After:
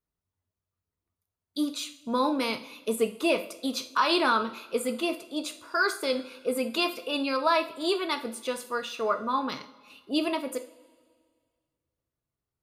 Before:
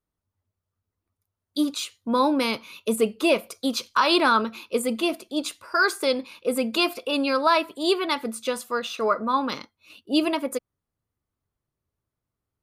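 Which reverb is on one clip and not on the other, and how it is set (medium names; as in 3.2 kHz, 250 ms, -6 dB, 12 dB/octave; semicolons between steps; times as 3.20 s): two-slope reverb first 0.44 s, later 1.9 s, from -18 dB, DRR 6.5 dB; trim -5 dB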